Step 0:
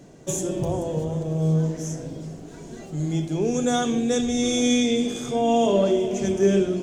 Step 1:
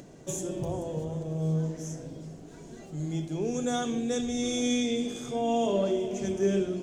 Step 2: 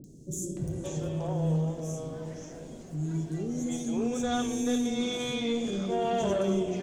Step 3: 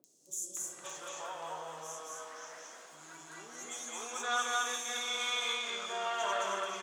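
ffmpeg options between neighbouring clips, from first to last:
-af "acompressor=mode=upward:threshold=0.0158:ratio=2.5,volume=0.447"
-filter_complex "[0:a]asoftclip=type=tanh:threshold=0.0794,acrossover=split=370|5400[s0][s1][s2];[s2]adelay=40[s3];[s1]adelay=570[s4];[s0][s4][s3]amix=inputs=3:normalize=0,volume=1.33"
-af "highpass=f=1200:t=q:w=2.7,aecho=1:1:218.7|274.1:0.891|0.282,volume=0.891"

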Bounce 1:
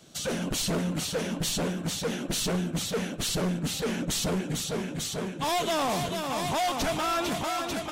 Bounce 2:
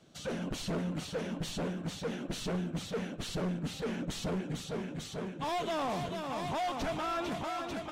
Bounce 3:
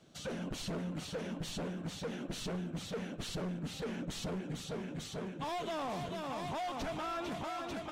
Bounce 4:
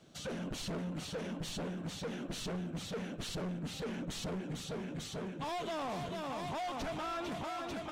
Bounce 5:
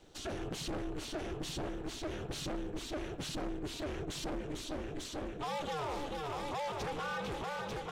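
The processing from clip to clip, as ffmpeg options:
-af "lowpass=f=2500:p=1,volume=0.531"
-af "acompressor=threshold=0.0178:ratio=6,volume=0.891"
-af "asoftclip=type=tanh:threshold=0.0188,volume=1.19"
-af "aeval=exprs='val(0)*sin(2*PI*150*n/s)':c=same,volume=1.5"

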